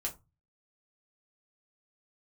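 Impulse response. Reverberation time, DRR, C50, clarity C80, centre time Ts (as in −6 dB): 0.25 s, −1.5 dB, 16.0 dB, 23.0 dB, 11 ms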